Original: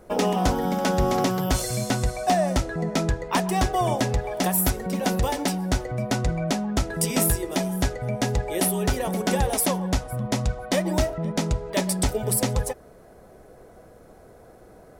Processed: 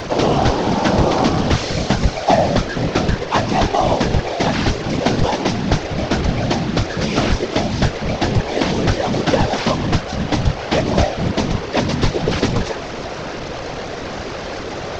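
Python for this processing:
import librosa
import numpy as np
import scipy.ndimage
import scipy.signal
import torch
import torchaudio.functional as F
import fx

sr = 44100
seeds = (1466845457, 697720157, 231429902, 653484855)

y = fx.delta_mod(x, sr, bps=32000, step_db=-27.5)
y = fx.whisperise(y, sr, seeds[0])
y = fx.doppler_dist(y, sr, depth_ms=0.27)
y = y * librosa.db_to_amplitude(7.0)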